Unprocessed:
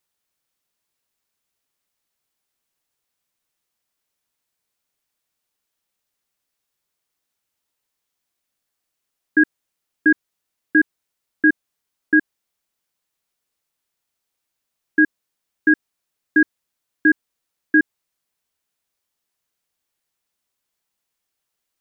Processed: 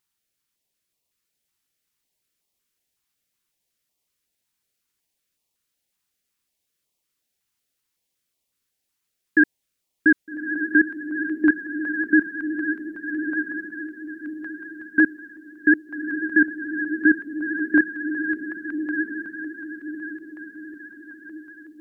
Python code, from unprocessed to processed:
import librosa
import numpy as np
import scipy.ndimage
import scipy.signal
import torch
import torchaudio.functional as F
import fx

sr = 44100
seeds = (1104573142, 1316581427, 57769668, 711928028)

y = fx.echo_diffused(x, sr, ms=1232, feedback_pct=44, wet_db=-5.0)
y = fx.vibrato(y, sr, rate_hz=14.0, depth_cents=54.0)
y = fx.filter_held_notch(y, sr, hz=5.4, low_hz=560.0, high_hz=1500.0)